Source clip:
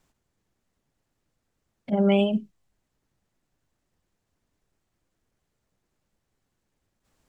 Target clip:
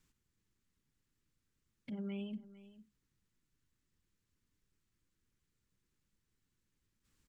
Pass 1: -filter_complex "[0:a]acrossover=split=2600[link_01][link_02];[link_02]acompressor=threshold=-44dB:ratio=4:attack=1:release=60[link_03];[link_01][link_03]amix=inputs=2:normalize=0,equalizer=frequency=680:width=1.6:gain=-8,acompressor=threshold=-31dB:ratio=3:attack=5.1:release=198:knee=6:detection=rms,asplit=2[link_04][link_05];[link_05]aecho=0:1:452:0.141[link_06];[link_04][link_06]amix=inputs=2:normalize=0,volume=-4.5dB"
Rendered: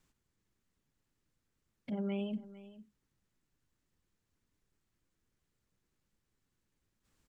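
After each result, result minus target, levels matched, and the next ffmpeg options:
downward compressor: peak gain reduction −4 dB; 500 Hz band +2.5 dB
-filter_complex "[0:a]acrossover=split=2600[link_01][link_02];[link_02]acompressor=threshold=-44dB:ratio=4:attack=1:release=60[link_03];[link_01][link_03]amix=inputs=2:normalize=0,equalizer=frequency=680:width=1.6:gain=-8,acompressor=threshold=-38.5dB:ratio=3:attack=5.1:release=198:knee=6:detection=rms,asplit=2[link_04][link_05];[link_05]aecho=0:1:452:0.141[link_06];[link_04][link_06]amix=inputs=2:normalize=0,volume=-4.5dB"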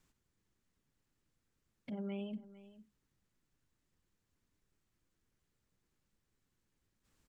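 500 Hz band +2.5 dB
-filter_complex "[0:a]acrossover=split=2600[link_01][link_02];[link_02]acompressor=threshold=-44dB:ratio=4:attack=1:release=60[link_03];[link_01][link_03]amix=inputs=2:normalize=0,equalizer=frequency=680:width=1.6:gain=-18.5,acompressor=threshold=-38.5dB:ratio=3:attack=5.1:release=198:knee=6:detection=rms,asplit=2[link_04][link_05];[link_05]aecho=0:1:452:0.141[link_06];[link_04][link_06]amix=inputs=2:normalize=0,volume=-4.5dB"

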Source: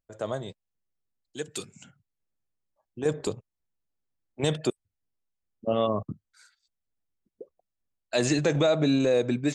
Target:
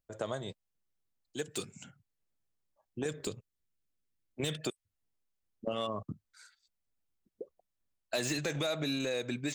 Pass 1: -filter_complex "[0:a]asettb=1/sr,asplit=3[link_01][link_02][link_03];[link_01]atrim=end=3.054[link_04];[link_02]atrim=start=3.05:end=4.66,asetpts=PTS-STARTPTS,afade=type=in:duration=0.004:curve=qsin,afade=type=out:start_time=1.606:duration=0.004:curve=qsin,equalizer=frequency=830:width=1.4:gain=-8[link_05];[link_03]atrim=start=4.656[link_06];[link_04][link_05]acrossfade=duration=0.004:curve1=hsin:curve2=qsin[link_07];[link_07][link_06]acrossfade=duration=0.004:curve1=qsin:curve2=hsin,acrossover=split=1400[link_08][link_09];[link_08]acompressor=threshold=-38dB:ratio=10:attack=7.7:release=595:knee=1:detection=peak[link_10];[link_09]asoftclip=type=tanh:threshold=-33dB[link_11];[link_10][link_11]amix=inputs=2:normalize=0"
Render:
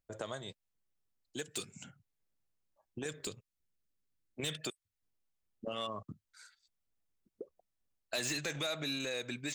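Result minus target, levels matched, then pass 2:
downward compressor: peak gain reduction +6.5 dB
-filter_complex "[0:a]asettb=1/sr,asplit=3[link_01][link_02][link_03];[link_01]atrim=end=3.054[link_04];[link_02]atrim=start=3.05:end=4.66,asetpts=PTS-STARTPTS,afade=type=in:duration=0.004:curve=qsin,afade=type=out:start_time=1.606:duration=0.004:curve=qsin,equalizer=frequency=830:width=1.4:gain=-8[link_05];[link_03]atrim=start=4.656[link_06];[link_04][link_05]acrossfade=duration=0.004:curve1=hsin:curve2=qsin[link_07];[link_07][link_06]acrossfade=duration=0.004:curve1=qsin:curve2=hsin,acrossover=split=1400[link_08][link_09];[link_08]acompressor=threshold=-31dB:ratio=10:attack=7.7:release=595:knee=1:detection=peak[link_10];[link_09]asoftclip=type=tanh:threshold=-33dB[link_11];[link_10][link_11]amix=inputs=2:normalize=0"

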